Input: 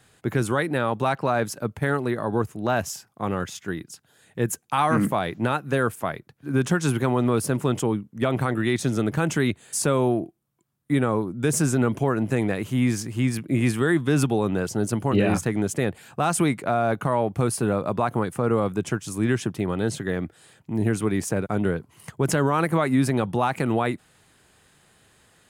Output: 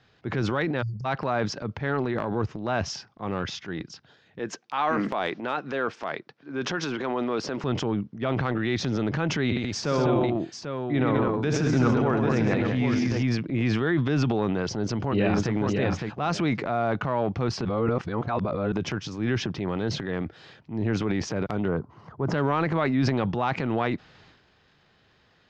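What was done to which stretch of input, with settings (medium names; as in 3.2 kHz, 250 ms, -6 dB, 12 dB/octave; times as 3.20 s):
0.82–1.05 s: spectral selection erased 210–4500 Hz
4.39–7.64 s: high-pass 290 Hz
9.44–13.23 s: multi-tap echo 62/125/202/793 ms -11/-5.5/-5/-7 dB
14.77–15.53 s: echo throw 560 ms, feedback 10%, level -4.5 dB
17.65–18.72 s: reverse
21.68–22.34 s: resonant high shelf 1.7 kHz -12.5 dB, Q 1.5
whole clip: steep low-pass 5.6 kHz 48 dB/octave; transient shaper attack -4 dB, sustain +9 dB; trim -3 dB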